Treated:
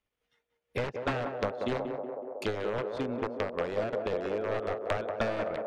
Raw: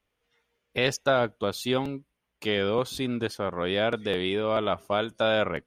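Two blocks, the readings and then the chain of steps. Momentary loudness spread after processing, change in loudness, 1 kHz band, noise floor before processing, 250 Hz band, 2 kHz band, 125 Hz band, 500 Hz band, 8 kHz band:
4 LU, -6.0 dB, -5.0 dB, -80 dBFS, -6.5 dB, -7.5 dB, -5.0 dB, -4.5 dB, under -15 dB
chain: integer overflow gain 18.5 dB; transient shaper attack +9 dB, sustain -11 dB; low-pass that closes with the level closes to 1.7 kHz, closed at -23 dBFS; on a send: band-passed feedback delay 185 ms, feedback 84%, band-pass 540 Hz, level -4 dB; on the sum: trim -7.5 dB

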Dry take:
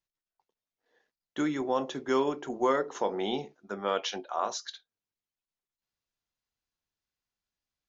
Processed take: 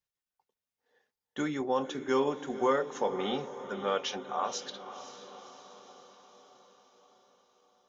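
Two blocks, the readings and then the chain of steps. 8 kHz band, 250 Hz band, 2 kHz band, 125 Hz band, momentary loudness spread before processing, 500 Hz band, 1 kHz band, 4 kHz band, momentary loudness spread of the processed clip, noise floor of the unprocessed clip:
no reading, -2.0 dB, -0.5 dB, +0.5 dB, 9 LU, -0.5 dB, -1.0 dB, -1.0 dB, 19 LU, under -85 dBFS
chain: band-stop 4.3 kHz, Q 20; comb of notches 330 Hz; on a send: echo that smears into a reverb 525 ms, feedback 58%, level -12.5 dB

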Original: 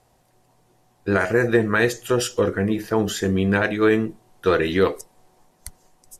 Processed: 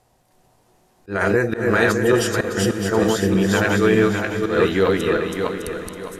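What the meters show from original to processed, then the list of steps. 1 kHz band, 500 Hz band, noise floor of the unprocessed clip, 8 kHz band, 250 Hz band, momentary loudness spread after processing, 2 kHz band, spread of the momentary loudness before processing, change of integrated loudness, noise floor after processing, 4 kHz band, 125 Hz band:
+3.0 dB, +2.5 dB, -62 dBFS, +3.5 dB, +2.5 dB, 9 LU, +2.5 dB, 5 LU, +2.0 dB, -60 dBFS, +3.5 dB, +3.0 dB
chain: backward echo that repeats 304 ms, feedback 57%, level -1 dB; slow attack 159 ms; echo that smears into a reverb 453 ms, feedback 45%, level -13 dB

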